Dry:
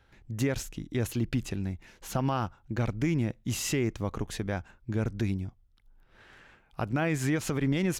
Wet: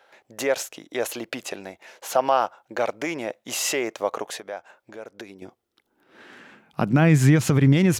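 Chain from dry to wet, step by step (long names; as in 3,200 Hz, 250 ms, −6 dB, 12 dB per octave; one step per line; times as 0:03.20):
0:04.27–0:05.42: downward compressor 16 to 1, threshold −36 dBFS, peak gain reduction 13.5 dB
high-pass filter sweep 590 Hz → 99 Hz, 0:04.98–0:07.76
level +7.5 dB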